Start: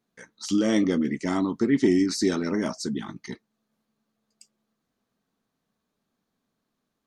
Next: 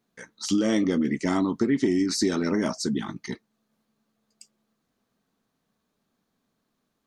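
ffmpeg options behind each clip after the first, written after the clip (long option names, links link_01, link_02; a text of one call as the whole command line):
ffmpeg -i in.wav -af "acompressor=threshold=-22dB:ratio=6,volume=3dB" out.wav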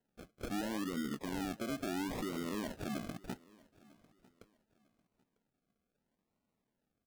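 ffmpeg -i in.wav -af "alimiter=limit=-21.5dB:level=0:latency=1:release=150,acrusher=samples=37:mix=1:aa=0.000001:lfo=1:lforange=22.2:lforate=0.74,aecho=1:1:949|1898:0.0631|0.0189,volume=-8.5dB" out.wav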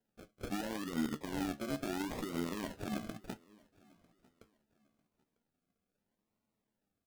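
ffmpeg -i in.wav -filter_complex "[0:a]flanger=delay=9.2:depth=4.8:regen=57:speed=0.31:shape=sinusoidal,asplit=2[link_01][link_02];[link_02]acrusher=bits=5:mix=0:aa=0.000001,volume=-9.5dB[link_03];[link_01][link_03]amix=inputs=2:normalize=0,volume=2.5dB" out.wav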